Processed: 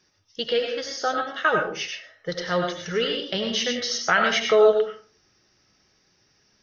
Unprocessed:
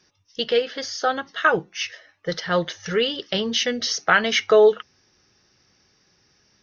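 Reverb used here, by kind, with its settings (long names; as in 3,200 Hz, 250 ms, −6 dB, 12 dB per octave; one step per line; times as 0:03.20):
comb and all-pass reverb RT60 0.44 s, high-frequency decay 0.55×, pre-delay 55 ms, DRR 2.5 dB
level −3.5 dB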